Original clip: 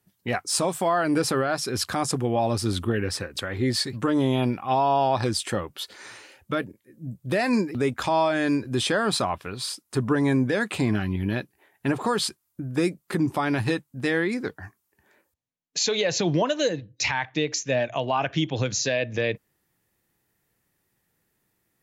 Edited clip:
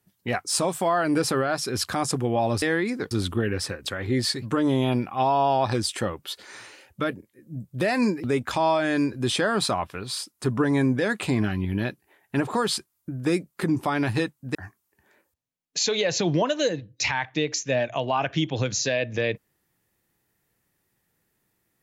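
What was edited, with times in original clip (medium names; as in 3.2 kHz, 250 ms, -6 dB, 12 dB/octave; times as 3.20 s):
14.06–14.55 s: move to 2.62 s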